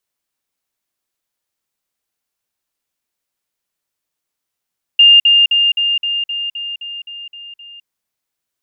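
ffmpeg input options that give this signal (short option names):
-f lavfi -i "aevalsrc='pow(10,(-3.5-3*floor(t/0.26))/20)*sin(2*PI*2810*t)*clip(min(mod(t,0.26),0.21-mod(t,0.26))/0.005,0,1)':d=2.86:s=44100"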